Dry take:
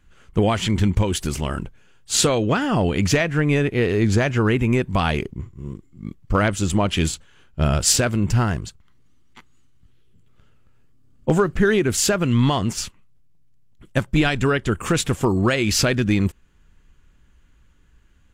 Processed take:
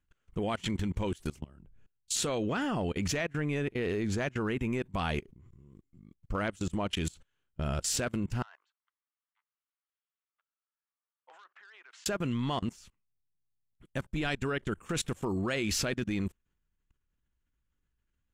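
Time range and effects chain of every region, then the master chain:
1.39–2.16 s: bass shelf 370 Hz +10.5 dB + compression 3:1, threshold -23 dBFS + three bands expanded up and down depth 100%
8.42–12.06 s: high-pass 950 Hz 24 dB/octave + tape spacing loss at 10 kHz 35 dB + transformer saturation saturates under 2.6 kHz
whole clip: band-stop 4.8 kHz, Q 25; dynamic bell 110 Hz, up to -6 dB, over -37 dBFS, Q 3.9; level held to a coarse grid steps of 24 dB; trim -7 dB

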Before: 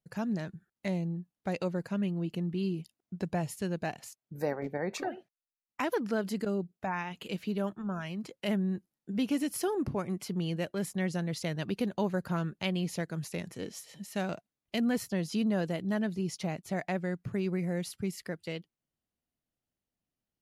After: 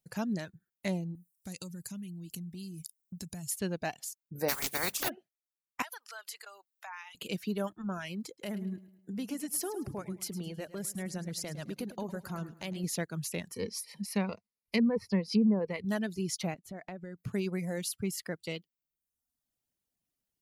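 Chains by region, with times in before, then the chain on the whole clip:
1.15–3.51 s: FFT filter 170 Hz 0 dB, 520 Hz -14 dB, 2.8 kHz -6 dB, 7.7 kHz +11 dB + compression 5:1, threshold -38 dBFS
4.48–5.08 s: spectral contrast reduction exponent 0.29 + hum notches 50/100/150/200/250 Hz
5.82–7.15 s: high-pass 890 Hz 24 dB/octave + compression 2:1, threshold -46 dBFS + tape noise reduction on one side only encoder only
8.27–12.84 s: compression 2:1, threshold -38 dBFS + peaking EQ 3 kHz -5 dB 1 oct + feedback delay 106 ms, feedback 46%, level -8 dB
13.54–15.85 s: rippled EQ curve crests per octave 0.88, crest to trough 12 dB + low-pass that closes with the level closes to 770 Hz, closed at -21 dBFS
16.54–17.18 s: treble shelf 2.3 kHz -10.5 dB + compression, threshold -38 dBFS
whole clip: reverb removal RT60 0.85 s; treble shelf 4.8 kHz +10 dB

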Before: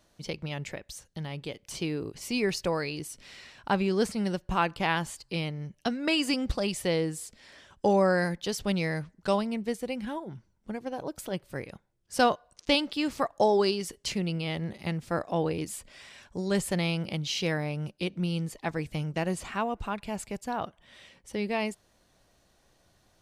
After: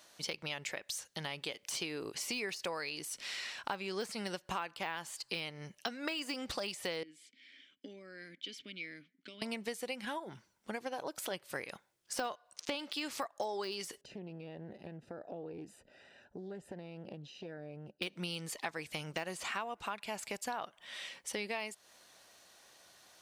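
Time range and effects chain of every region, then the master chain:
7.03–9.42 s: dynamic bell 2 kHz, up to -6 dB, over -51 dBFS, Q 5.9 + compression, threshold -27 dBFS + vowel filter i
14.01–18.02 s: compression 16:1, threshold -35 dBFS + boxcar filter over 40 samples + loudspeaker Doppler distortion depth 0.2 ms
whole clip: de-esser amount 95%; high-pass 1.2 kHz 6 dB/octave; compression 6:1, threshold -45 dBFS; trim +9 dB

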